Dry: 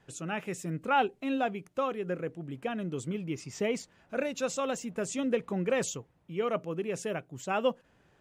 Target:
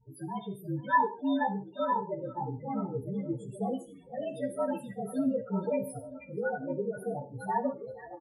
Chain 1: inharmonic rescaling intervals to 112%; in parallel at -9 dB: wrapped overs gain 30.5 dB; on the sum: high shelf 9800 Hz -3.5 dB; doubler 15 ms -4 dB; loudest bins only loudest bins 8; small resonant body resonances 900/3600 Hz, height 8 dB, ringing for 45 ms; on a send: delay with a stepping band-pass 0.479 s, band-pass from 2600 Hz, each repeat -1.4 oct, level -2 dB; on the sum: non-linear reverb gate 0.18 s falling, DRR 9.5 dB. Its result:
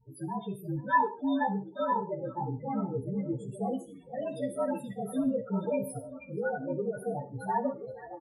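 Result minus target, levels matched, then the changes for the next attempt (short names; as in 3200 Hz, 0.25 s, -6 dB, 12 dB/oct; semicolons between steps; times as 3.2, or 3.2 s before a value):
wrapped overs: distortion -24 dB
change: wrapped overs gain 42 dB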